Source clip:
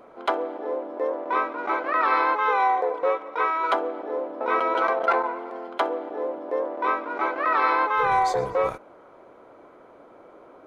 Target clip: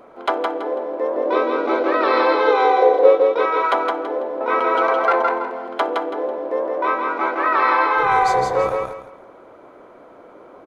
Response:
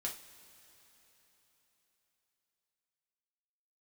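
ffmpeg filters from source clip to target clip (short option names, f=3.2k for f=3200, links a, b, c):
-filter_complex "[0:a]asettb=1/sr,asplit=3[a][b][c];[a]atrim=end=1.164[d];[b]atrim=start=1.16:end=3.46,asetpts=PTS-STARTPTS,afade=t=in:d=0.004:c=qsin,afade=t=out:st=2.296:d=0.004:c=qsin,equalizer=f=125:t=o:w=1:g=-10,equalizer=f=250:t=o:w=1:g=7,equalizer=f=500:t=o:w=1:g=9,equalizer=f=1k:t=o:w=1:g=-5,equalizer=f=2k:t=o:w=1:g=-4,equalizer=f=4k:t=o:w=1:g=8[e];[c]atrim=start=3.456[f];[d][e]acrossfade=d=0.004:c1=hsin:c2=qsin[g];[g][f]acrossfade=d=0.004:c1=qsin:c2=hsin,aecho=1:1:165|330|495|660:0.668|0.187|0.0524|0.0147,volume=3.5dB"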